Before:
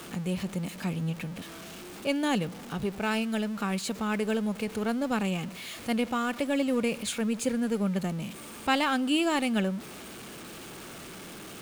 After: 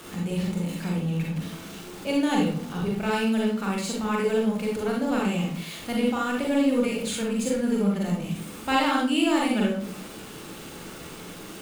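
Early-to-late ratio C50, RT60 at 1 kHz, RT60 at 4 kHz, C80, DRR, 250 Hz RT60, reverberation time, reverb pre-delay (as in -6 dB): 2.0 dB, 0.45 s, 0.35 s, 8.0 dB, -2.5 dB, 0.70 s, 0.50 s, 38 ms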